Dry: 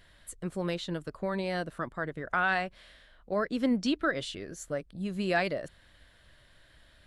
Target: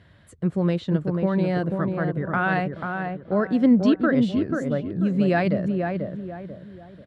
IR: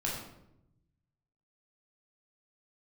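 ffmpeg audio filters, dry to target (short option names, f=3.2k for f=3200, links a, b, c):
-filter_complex "[0:a]highpass=f=98:w=0.5412,highpass=f=98:w=1.3066,aemphasis=mode=reproduction:type=riaa,asplit=2[a][b];[b]adelay=489,lowpass=f=1.4k:p=1,volume=-4dB,asplit=2[c][d];[d]adelay=489,lowpass=f=1.4k:p=1,volume=0.36,asplit=2[e][f];[f]adelay=489,lowpass=f=1.4k:p=1,volume=0.36,asplit=2[g][h];[h]adelay=489,lowpass=f=1.4k:p=1,volume=0.36,asplit=2[i][j];[j]adelay=489,lowpass=f=1.4k:p=1,volume=0.36[k];[a][c][e][g][i][k]amix=inputs=6:normalize=0,volume=4dB"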